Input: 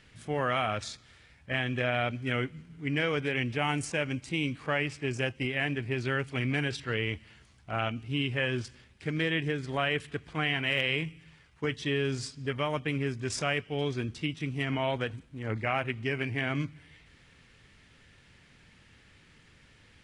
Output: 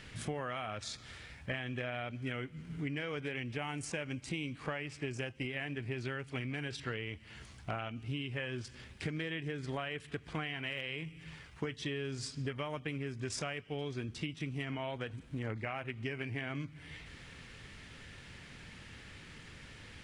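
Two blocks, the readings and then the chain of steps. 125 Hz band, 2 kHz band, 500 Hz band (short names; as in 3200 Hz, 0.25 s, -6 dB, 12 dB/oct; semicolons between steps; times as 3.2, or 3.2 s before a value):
-7.0 dB, -9.0 dB, -8.5 dB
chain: compressor 16:1, threshold -42 dBFS, peak gain reduction 19 dB; gain +7 dB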